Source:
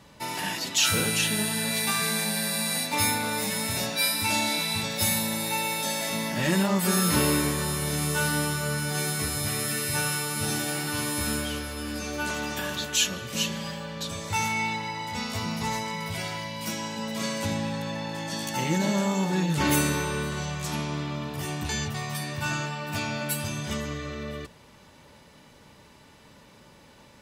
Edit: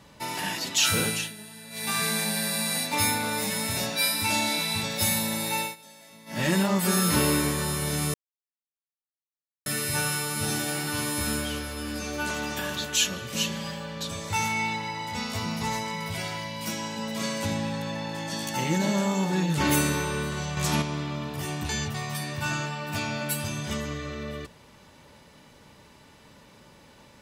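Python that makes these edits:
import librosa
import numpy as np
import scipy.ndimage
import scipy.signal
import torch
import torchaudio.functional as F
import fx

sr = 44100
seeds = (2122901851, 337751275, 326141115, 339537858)

y = fx.edit(x, sr, fx.fade_down_up(start_s=1.05, length_s=0.93, db=-16.5, fade_s=0.28),
    fx.fade_down_up(start_s=5.61, length_s=0.8, db=-21.0, fade_s=0.15),
    fx.silence(start_s=8.14, length_s=1.52),
    fx.clip_gain(start_s=20.57, length_s=0.25, db=5.5), tone=tone)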